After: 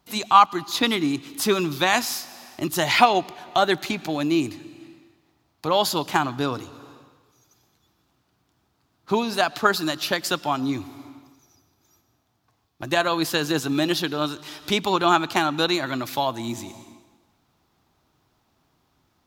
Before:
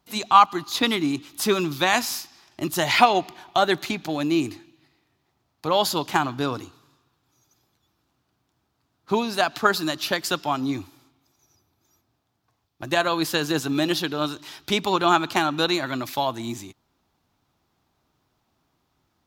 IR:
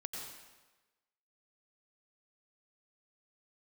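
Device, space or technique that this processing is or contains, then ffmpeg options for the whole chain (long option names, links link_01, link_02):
ducked reverb: -filter_complex "[0:a]asplit=3[link_01][link_02][link_03];[1:a]atrim=start_sample=2205[link_04];[link_02][link_04]afir=irnorm=-1:irlink=0[link_05];[link_03]apad=whole_len=849427[link_06];[link_05][link_06]sidechaincompress=threshold=-37dB:ratio=8:attack=7:release=341,volume=-2.5dB[link_07];[link_01][link_07]amix=inputs=2:normalize=0"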